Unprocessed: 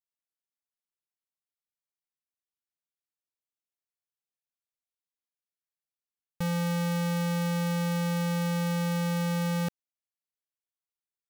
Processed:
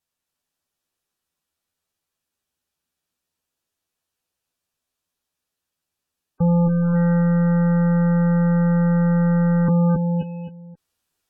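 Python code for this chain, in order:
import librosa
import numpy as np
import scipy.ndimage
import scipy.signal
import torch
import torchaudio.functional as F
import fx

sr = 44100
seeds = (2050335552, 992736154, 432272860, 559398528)

y = fx.low_shelf(x, sr, hz=280.0, db=5.5)
y = fx.notch(y, sr, hz=2100.0, q=10.0)
y = fx.echo_feedback(y, sr, ms=264, feedback_pct=29, wet_db=-3.0)
y = fx.clip_asym(y, sr, top_db=-28.0, bottom_db=-23.0)
y = fx.high_shelf(y, sr, hz=7700.0, db=-2.5)
y = fx.doubler(y, sr, ms=12.0, db=-3.5)
y = fx.env_lowpass_down(y, sr, base_hz=2600.0, full_db=-25.0)
y = fx.rider(y, sr, range_db=10, speed_s=0.5)
y = fx.fold_sine(y, sr, drive_db=7, ceiling_db=-18.0)
y = fx.spec_gate(y, sr, threshold_db=-25, keep='strong')
y = F.gain(torch.from_numpy(y), 3.0).numpy()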